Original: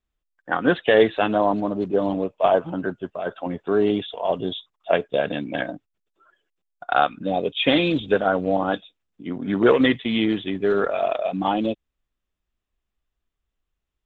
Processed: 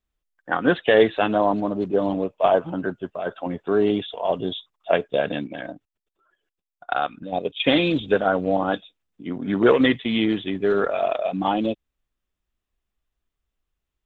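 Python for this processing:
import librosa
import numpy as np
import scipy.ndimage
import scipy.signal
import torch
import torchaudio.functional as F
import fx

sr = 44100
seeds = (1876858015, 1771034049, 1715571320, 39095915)

y = fx.level_steps(x, sr, step_db=11, at=(5.46, 7.65), fade=0.02)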